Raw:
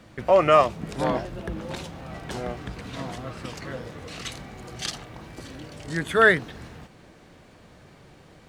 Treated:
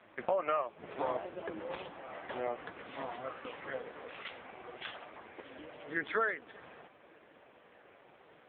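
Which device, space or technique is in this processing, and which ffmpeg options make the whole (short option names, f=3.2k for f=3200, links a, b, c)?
voicemail: -af "highpass=420,lowpass=3.1k,acompressor=threshold=-28dB:ratio=8" -ar 8000 -c:a libopencore_amrnb -b:a 5150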